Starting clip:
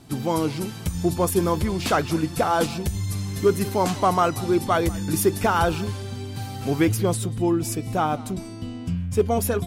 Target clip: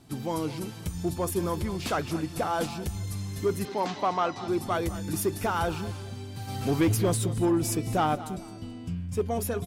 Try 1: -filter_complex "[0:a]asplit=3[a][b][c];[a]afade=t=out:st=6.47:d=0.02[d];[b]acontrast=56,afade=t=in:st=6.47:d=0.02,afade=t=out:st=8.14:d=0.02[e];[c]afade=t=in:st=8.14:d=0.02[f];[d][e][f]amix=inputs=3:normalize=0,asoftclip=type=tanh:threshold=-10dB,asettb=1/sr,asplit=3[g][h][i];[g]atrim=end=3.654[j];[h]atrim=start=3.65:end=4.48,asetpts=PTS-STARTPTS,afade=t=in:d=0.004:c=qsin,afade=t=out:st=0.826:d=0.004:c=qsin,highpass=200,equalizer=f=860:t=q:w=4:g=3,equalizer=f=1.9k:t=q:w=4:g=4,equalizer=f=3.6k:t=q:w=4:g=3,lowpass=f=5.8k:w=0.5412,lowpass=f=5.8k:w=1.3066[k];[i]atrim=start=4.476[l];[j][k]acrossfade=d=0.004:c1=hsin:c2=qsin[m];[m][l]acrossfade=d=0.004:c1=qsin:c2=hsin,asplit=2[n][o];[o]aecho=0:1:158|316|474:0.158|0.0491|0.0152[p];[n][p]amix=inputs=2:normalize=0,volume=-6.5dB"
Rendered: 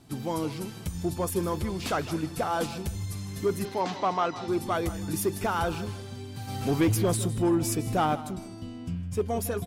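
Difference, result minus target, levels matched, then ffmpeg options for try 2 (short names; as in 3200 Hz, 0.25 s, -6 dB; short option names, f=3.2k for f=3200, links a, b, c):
echo 58 ms early
-filter_complex "[0:a]asplit=3[a][b][c];[a]afade=t=out:st=6.47:d=0.02[d];[b]acontrast=56,afade=t=in:st=6.47:d=0.02,afade=t=out:st=8.14:d=0.02[e];[c]afade=t=in:st=8.14:d=0.02[f];[d][e][f]amix=inputs=3:normalize=0,asoftclip=type=tanh:threshold=-10dB,asettb=1/sr,asplit=3[g][h][i];[g]atrim=end=3.654[j];[h]atrim=start=3.65:end=4.48,asetpts=PTS-STARTPTS,afade=t=in:d=0.004:c=qsin,afade=t=out:st=0.826:d=0.004:c=qsin,highpass=200,equalizer=f=860:t=q:w=4:g=3,equalizer=f=1.9k:t=q:w=4:g=4,equalizer=f=3.6k:t=q:w=4:g=3,lowpass=f=5.8k:w=0.5412,lowpass=f=5.8k:w=1.3066[k];[i]atrim=start=4.476[l];[j][k]acrossfade=d=0.004:c1=hsin:c2=qsin[m];[m][l]acrossfade=d=0.004:c1=qsin:c2=hsin,asplit=2[n][o];[o]aecho=0:1:216|432|648:0.158|0.0491|0.0152[p];[n][p]amix=inputs=2:normalize=0,volume=-6.5dB"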